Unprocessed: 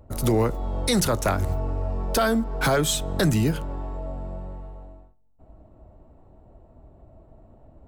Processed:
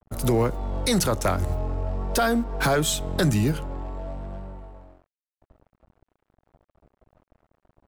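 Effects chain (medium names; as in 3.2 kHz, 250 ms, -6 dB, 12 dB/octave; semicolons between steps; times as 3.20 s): vibrato 0.52 Hz 62 cents; crossover distortion -46 dBFS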